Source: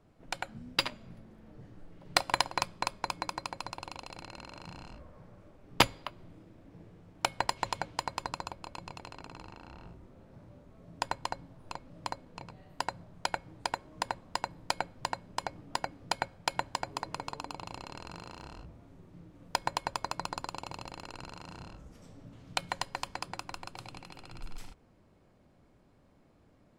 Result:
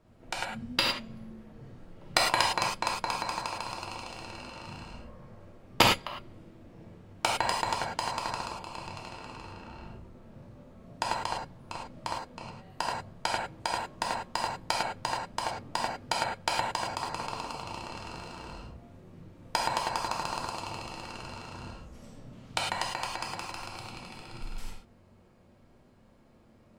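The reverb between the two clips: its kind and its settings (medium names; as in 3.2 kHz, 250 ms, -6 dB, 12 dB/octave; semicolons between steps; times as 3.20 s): gated-style reverb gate 130 ms flat, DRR -2.5 dB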